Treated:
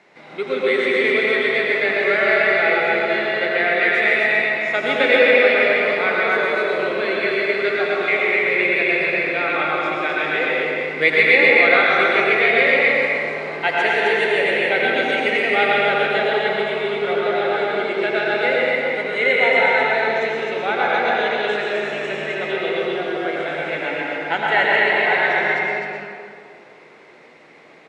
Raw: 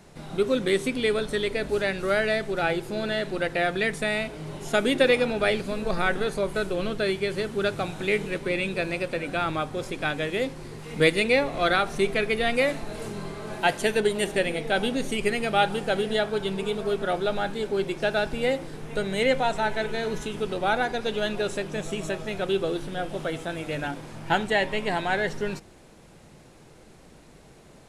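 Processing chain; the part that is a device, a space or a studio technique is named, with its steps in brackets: station announcement (band-pass 370–3800 Hz; peaking EQ 2.1 kHz +11 dB 0.4 oct; loudspeakers at several distances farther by 29 m -10 dB, 45 m -11 dB, 89 m -3 dB; reverberation RT60 2.3 s, pre-delay 98 ms, DRR -4 dB)

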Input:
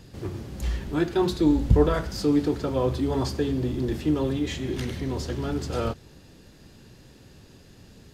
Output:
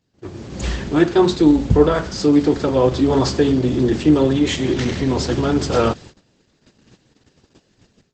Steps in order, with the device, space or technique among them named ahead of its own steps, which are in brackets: video call (high-pass 150 Hz 6 dB/octave; level rider gain up to 13.5 dB; gate -36 dBFS, range -19 dB; Opus 12 kbps 48 kHz)

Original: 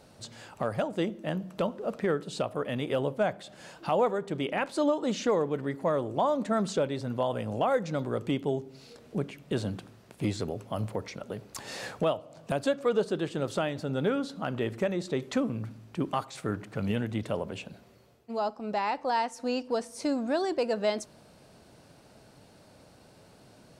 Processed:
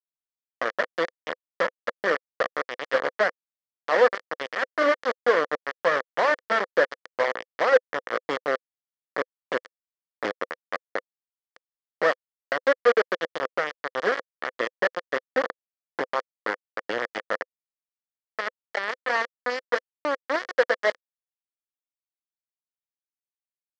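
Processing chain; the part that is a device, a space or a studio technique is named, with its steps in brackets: hand-held game console (bit crusher 4-bit; cabinet simulation 410–4300 Hz, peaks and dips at 510 Hz +9 dB, 860 Hz -4 dB, 1.2 kHz +4 dB, 1.8 kHz +9 dB, 2.6 kHz -9 dB, 3.8 kHz -8 dB); trim +1.5 dB

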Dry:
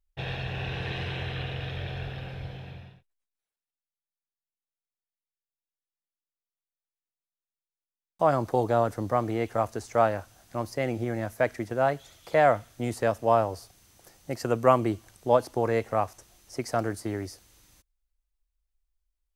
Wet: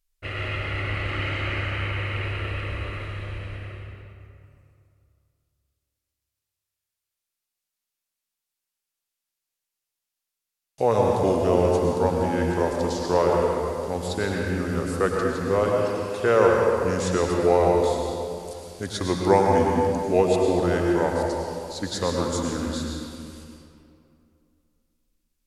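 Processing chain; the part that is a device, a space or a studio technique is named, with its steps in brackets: treble shelf 2.7 kHz +9.5 dB; slowed and reverbed (tape speed -24%; reverberation RT60 2.6 s, pre-delay 95 ms, DRR -1 dB)

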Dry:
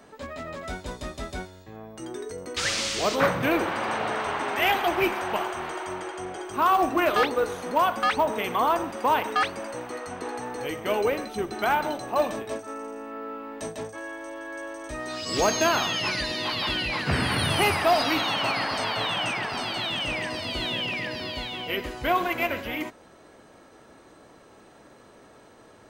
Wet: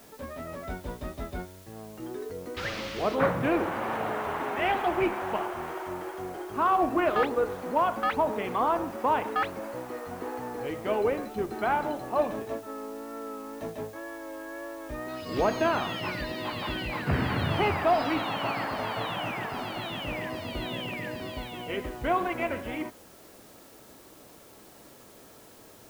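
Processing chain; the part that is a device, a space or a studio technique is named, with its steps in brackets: cassette deck with a dirty head (tape spacing loss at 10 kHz 31 dB; wow and flutter 32 cents; white noise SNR 25 dB)

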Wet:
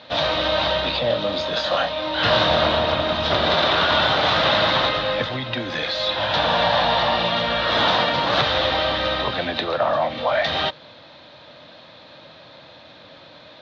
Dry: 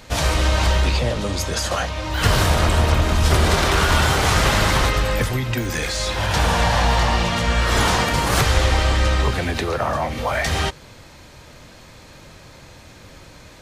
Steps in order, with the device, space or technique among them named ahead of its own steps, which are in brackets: low-pass 6.2 kHz 24 dB/octave; kitchen radio (cabinet simulation 200–4100 Hz, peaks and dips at 210 Hz -3 dB, 400 Hz -8 dB, 610 Hz +7 dB, 2.2 kHz -4 dB, 3.7 kHz +10 dB); 1.07–2.79 s: doubling 26 ms -5 dB

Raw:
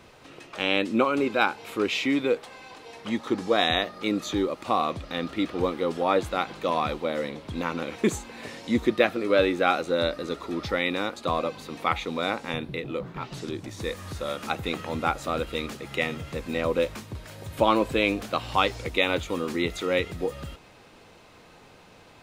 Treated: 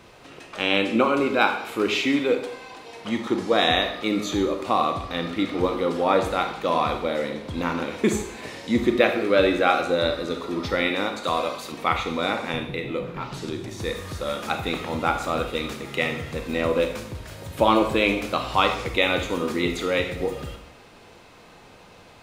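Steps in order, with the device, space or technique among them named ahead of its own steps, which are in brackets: bathroom (reverberation RT60 0.70 s, pre-delay 26 ms, DRR 5 dB); 11.24–11.72 s: tilt EQ +2 dB/octave; trim +2 dB

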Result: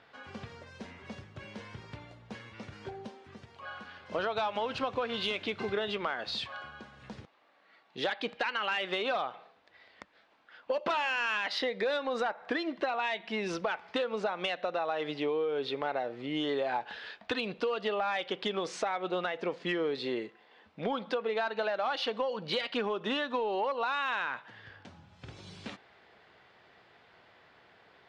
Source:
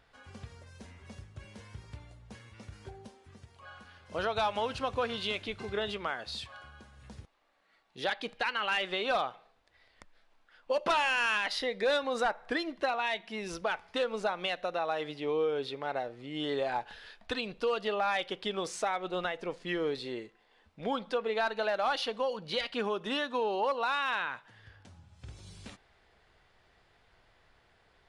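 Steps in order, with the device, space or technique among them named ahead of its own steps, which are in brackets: AM radio (band-pass 160–4200 Hz; compression, threshold -35 dBFS, peak gain reduction 10 dB; saturation -25 dBFS, distortion -27 dB); trim +7 dB

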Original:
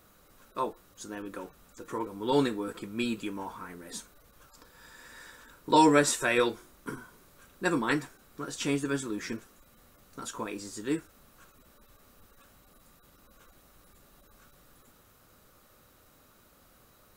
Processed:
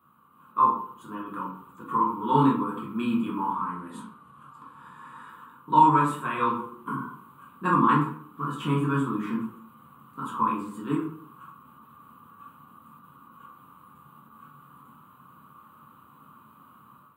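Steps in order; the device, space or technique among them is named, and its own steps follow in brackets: high-pass 110 Hz 12 dB/octave; FFT filter 110 Hz 0 dB, 190 Hz +5 dB, 630 Hz -15 dB, 1.1 kHz +12 dB, 1.9 kHz -14 dB, 3 kHz -5 dB, 5.5 kHz -30 dB, 8.4 kHz -14 dB, 15 kHz -6 dB; 3.52–5.29 s: low-pass 11 kHz 24 dB/octave; far laptop microphone (reverberation RT60 0.55 s, pre-delay 11 ms, DRR -3.5 dB; high-pass 120 Hz 6 dB/octave; level rider gain up to 8 dB); trim -5.5 dB

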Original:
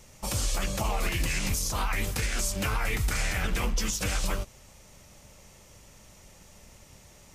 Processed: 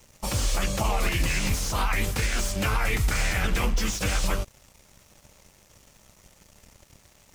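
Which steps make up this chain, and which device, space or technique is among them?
early transistor amplifier (crossover distortion -54 dBFS; slew-rate limiter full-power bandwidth 120 Hz); trim +4 dB

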